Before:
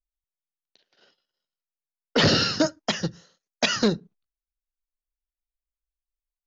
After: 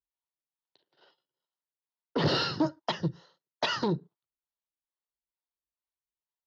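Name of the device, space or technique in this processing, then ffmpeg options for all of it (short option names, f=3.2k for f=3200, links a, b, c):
guitar amplifier with harmonic tremolo: -filter_complex "[0:a]acrossover=split=410[a][b];[a]aeval=exprs='val(0)*(1-0.7/2+0.7/2*cos(2*PI*2.3*n/s))':c=same[c];[b]aeval=exprs='val(0)*(1-0.7/2-0.7/2*cos(2*PI*2.3*n/s))':c=same[d];[c][d]amix=inputs=2:normalize=0,asoftclip=type=tanh:threshold=-20.5dB,highpass=100,equalizer=f=140:t=q:w=4:g=6,equalizer=f=220:t=q:w=4:g=-7,equalizer=f=350:t=q:w=4:g=5,equalizer=f=940:t=q:w=4:g=9,equalizer=f=1.6k:t=q:w=4:g=-3,equalizer=f=2.4k:t=q:w=4:g=-8,lowpass=f=4.4k:w=0.5412,lowpass=f=4.4k:w=1.3066"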